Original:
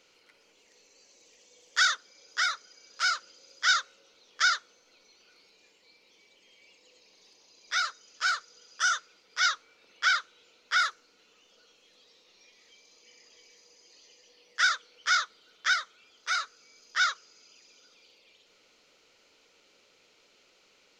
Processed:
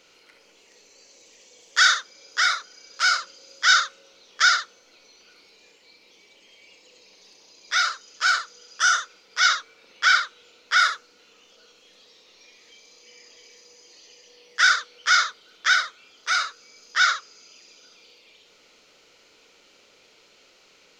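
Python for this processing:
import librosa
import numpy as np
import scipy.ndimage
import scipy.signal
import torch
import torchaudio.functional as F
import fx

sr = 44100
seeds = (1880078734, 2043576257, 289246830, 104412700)

y = fx.room_early_taps(x, sr, ms=(31, 68), db=(-9.5, -8.0))
y = y * librosa.db_to_amplitude(6.0)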